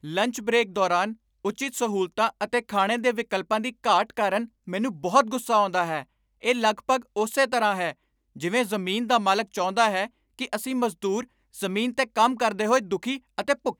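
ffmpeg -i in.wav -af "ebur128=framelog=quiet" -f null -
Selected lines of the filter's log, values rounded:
Integrated loudness:
  I:         -25.1 LUFS
  Threshold: -35.2 LUFS
Loudness range:
  LRA:         1.6 LU
  Threshold: -45.2 LUFS
  LRA low:   -25.9 LUFS
  LRA high:  -24.2 LUFS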